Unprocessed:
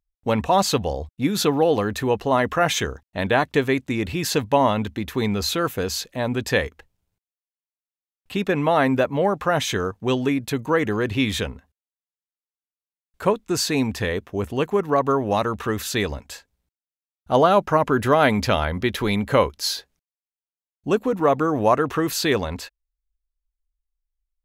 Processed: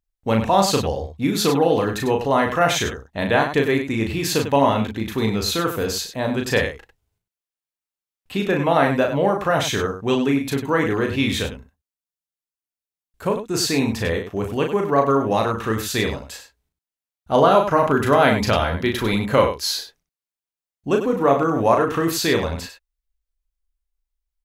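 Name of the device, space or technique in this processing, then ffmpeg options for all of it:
slapback doubling: -filter_complex "[0:a]asplit=3[a][b][c];[b]adelay=36,volume=-4dB[d];[c]adelay=98,volume=-9dB[e];[a][d][e]amix=inputs=3:normalize=0,asettb=1/sr,asplit=3[f][g][h];[f]atrim=end=11.464[i];[g]atrim=start=11.46:end=13.54,asetpts=PTS-STARTPTS,afade=t=in:d=0.004:c=qsin,afade=t=out:st=2.076:d=0.004:c=qsin,equalizer=f=1.3k:w=0.3:g=-5[j];[h]atrim=start=13.536[k];[i][j]acrossfade=d=0.004:c1=hsin:c2=qsin[l];[l][k]acrossfade=d=0.004:c1=qsin:c2=hsin"

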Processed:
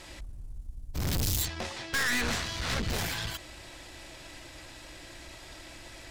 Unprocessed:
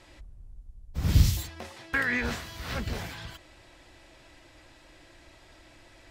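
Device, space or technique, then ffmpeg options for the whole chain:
valve amplifier with mains hum: -filter_complex "[0:a]asettb=1/sr,asplit=3[a][b][c];[a]atrim=end=1.454[d];[b]atrim=start=1.45:end=2.9,asetpts=PTS-STARTPTS,afade=t=in:d=0.004:c=qsin,afade=t=out:st=1.446:d=0.004:c=qsin,lowpass=6.5k[e];[c]atrim=start=2.896[f];[d][e]acrossfade=d=0.004:c1=hsin:c2=qsin[g];[g][f]acrossfade=d=0.004:c1=qsin:c2=hsin,aeval=exprs='(tanh(63.1*val(0)+0.45)-tanh(0.45))/63.1':c=same,aeval=exprs='val(0)+0.000447*(sin(2*PI*60*n/s)+sin(2*PI*2*60*n/s)/2+sin(2*PI*3*60*n/s)/3+sin(2*PI*4*60*n/s)/4+sin(2*PI*5*60*n/s)/5)':c=same,highshelf=f=3.7k:g=8,volume=7.5dB"

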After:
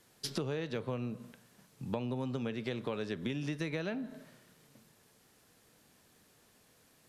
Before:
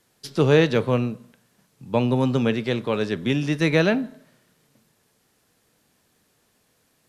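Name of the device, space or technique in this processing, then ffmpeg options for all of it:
serial compression, leveller first: -af "acompressor=threshold=-28dB:ratio=1.5,acompressor=threshold=-33dB:ratio=8"

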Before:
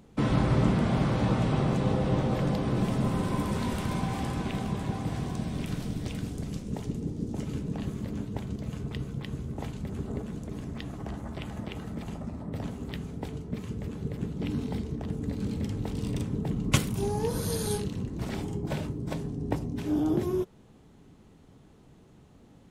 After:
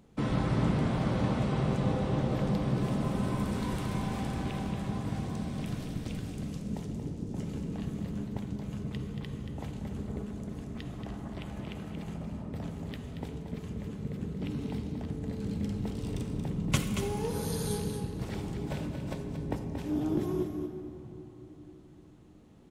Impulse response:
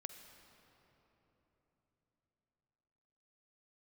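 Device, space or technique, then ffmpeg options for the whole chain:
cave: -filter_complex "[0:a]aecho=1:1:230:0.398[a];[1:a]atrim=start_sample=2205[b];[a][b]afir=irnorm=-1:irlink=0"

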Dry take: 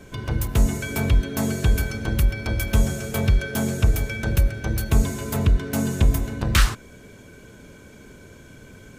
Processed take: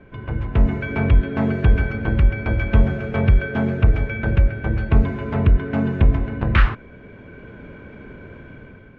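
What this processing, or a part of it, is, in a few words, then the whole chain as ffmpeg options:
action camera in a waterproof case: -af "lowpass=f=2.5k:w=0.5412,lowpass=f=2.5k:w=1.3066,dynaudnorm=f=200:g=5:m=8.5dB,volume=-2dB" -ar 48000 -c:a aac -b:a 96k

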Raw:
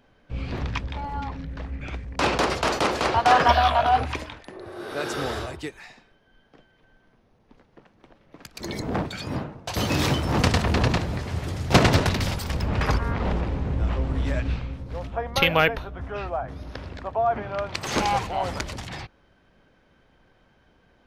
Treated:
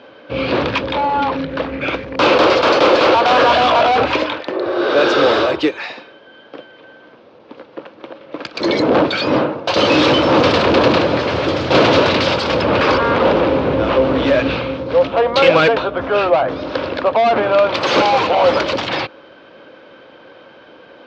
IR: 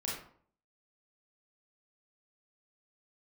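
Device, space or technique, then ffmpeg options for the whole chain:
overdrive pedal into a guitar cabinet: -filter_complex "[0:a]asplit=2[a][b];[b]highpass=f=720:p=1,volume=30dB,asoftclip=type=tanh:threshold=-3.5dB[c];[a][c]amix=inputs=2:normalize=0,lowpass=f=4.5k:p=1,volume=-6dB,highpass=91,equalizer=f=180:t=q:w=4:g=-3,equalizer=f=310:t=q:w=4:g=7,equalizer=f=530:t=q:w=4:g=9,equalizer=f=760:t=q:w=4:g=-4,equalizer=f=1.9k:t=q:w=4:g=-7,lowpass=f=4.6k:w=0.5412,lowpass=f=4.6k:w=1.3066,volume=-1.5dB"

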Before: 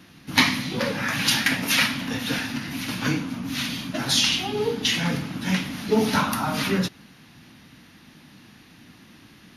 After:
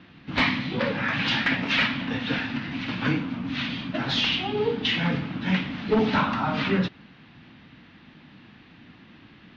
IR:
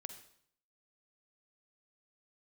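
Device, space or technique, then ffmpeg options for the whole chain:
synthesiser wavefolder: -af "aeval=exprs='0.211*(abs(mod(val(0)/0.211+3,4)-2)-1)':c=same,lowpass=f=3.6k:w=0.5412,lowpass=f=3.6k:w=1.3066"

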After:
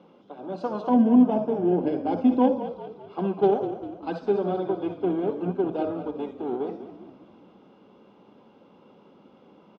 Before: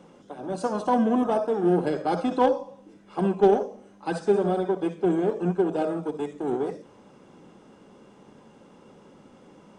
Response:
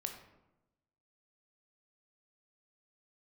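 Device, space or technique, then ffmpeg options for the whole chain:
frequency-shifting delay pedal into a guitar cabinet: -filter_complex "[0:a]asplit=6[a][b][c][d][e][f];[b]adelay=199,afreqshift=-37,volume=-11dB[g];[c]adelay=398,afreqshift=-74,volume=-16.8dB[h];[d]adelay=597,afreqshift=-111,volume=-22.7dB[i];[e]adelay=796,afreqshift=-148,volume=-28.5dB[j];[f]adelay=995,afreqshift=-185,volume=-34.4dB[k];[a][g][h][i][j][k]amix=inputs=6:normalize=0,highpass=85,equalizer=f=85:t=q:w=4:g=-9,equalizer=f=140:t=q:w=4:g=-7,equalizer=f=1.8k:t=q:w=4:g=-10,lowpass=f=4.1k:w=0.5412,lowpass=f=4.1k:w=1.3066,asettb=1/sr,asplit=3[l][m][n];[l]atrim=end=0.894[o];[m]atrim=start=0.89:end=2.66,asetpts=PTS-STARTPTS,afade=t=in:d=0.004:c=qsin,afade=t=out:st=1.766:d=0.004:c=qsin,equalizer=f=250:t=o:w=0.33:g=11,equalizer=f=1.25k:t=o:w=0.33:g=-11,equalizer=f=4k:t=o:w=0.33:g=-12[p];[n]atrim=start=2.656[q];[o][p]acrossfade=d=0.004:c1=hsin:c2=qsin[r];[r][q]acrossfade=d=0.004:c1=qsin:c2=hsin,volume=-2dB"

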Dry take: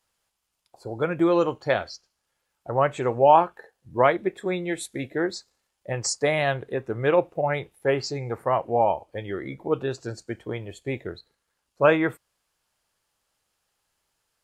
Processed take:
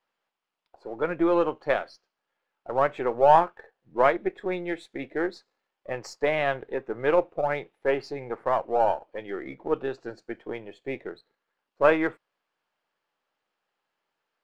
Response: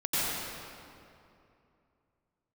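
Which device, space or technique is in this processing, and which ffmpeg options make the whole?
crystal radio: -af "highpass=240,lowpass=2.7k,aeval=exprs='if(lt(val(0),0),0.708*val(0),val(0))':c=same"

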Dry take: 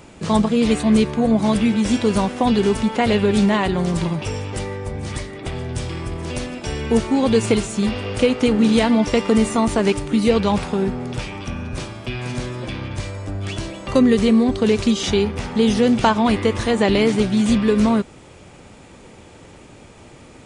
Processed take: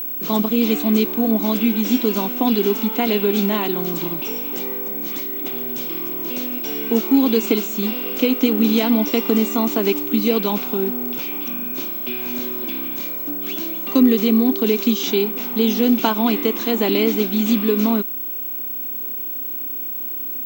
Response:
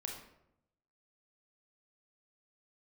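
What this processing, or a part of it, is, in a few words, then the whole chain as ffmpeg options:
old television with a line whistle: -af "highpass=f=230:w=0.5412,highpass=f=230:w=1.3066,equalizer=f=280:t=q:w=4:g=5,equalizer=f=550:t=q:w=4:g=-10,equalizer=f=850:t=q:w=4:g=-5,equalizer=f=1.2k:t=q:w=4:g=-4,equalizer=f=1.8k:t=q:w=4:g=-10,equalizer=f=4.8k:t=q:w=4:g=-4,lowpass=f=6.8k:w=0.5412,lowpass=f=6.8k:w=1.3066,aeval=exprs='val(0)+0.0562*sin(2*PI*15734*n/s)':c=same,volume=1dB"

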